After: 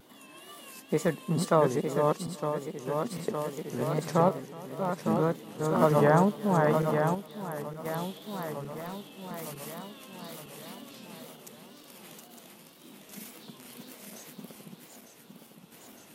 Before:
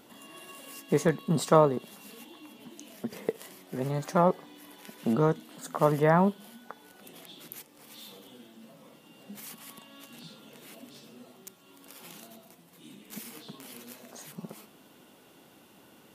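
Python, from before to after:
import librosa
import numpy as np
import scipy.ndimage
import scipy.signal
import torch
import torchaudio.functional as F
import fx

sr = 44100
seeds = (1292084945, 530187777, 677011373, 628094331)

y = fx.reverse_delay_fb(x, sr, ms=455, feedback_pct=73, wet_db=-3.0)
y = fx.tremolo_random(y, sr, seeds[0], hz=1.4, depth_pct=55)
y = fx.clip_hard(y, sr, threshold_db=-33.0, at=(8.61, 9.32))
y = fx.wow_flutter(y, sr, seeds[1], rate_hz=2.1, depth_cents=99.0)
y = y + 10.0 ** (-21.5 / 20.0) * np.pad(y, (int(367 * sr / 1000.0), 0))[:len(y)]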